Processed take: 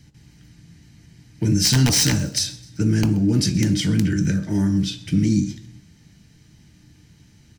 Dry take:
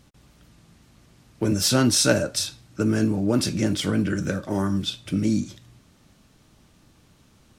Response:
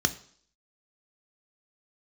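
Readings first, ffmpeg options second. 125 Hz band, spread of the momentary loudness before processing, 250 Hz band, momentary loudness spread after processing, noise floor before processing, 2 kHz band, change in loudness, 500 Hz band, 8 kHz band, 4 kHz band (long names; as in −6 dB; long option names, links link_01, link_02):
+7.5 dB, 9 LU, +3.0 dB, 8 LU, −58 dBFS, −0.5 dB, +3.5 dB, −6.0 dB, +3.5 dB, +3.0 dB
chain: -filter_complex "[0:a]acrossover=split=310|3000[link_01][link_02][link_03];[link_02]acompressor=threshold=-30dB:ratio=3[link_04];[link_01][link_04][link_03]amix=inputs=3:normalize=0,aeval=exprs='(mod(4.22*val(0)+1,2)-1)/4.22':channel_layout=same,aecho=1:1:129|258|387:0.0841|0.0404|0.0194,asplit=2[link_05][link_06];[1:a]atrim=start_sample=2205,asetrate=48510,aresample=44100[link_07];[link_06][link_07]afir=irnorm=-1:irlink=0,volume=-9dB[link_08];[link_05][link_08]amix=inputs=2:normalize=0"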